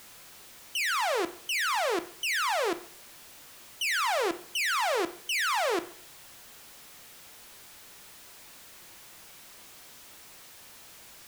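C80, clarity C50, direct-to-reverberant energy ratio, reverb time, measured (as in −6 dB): 19.5 dB, 16.0 dB, 10.0 dB, 0.50 s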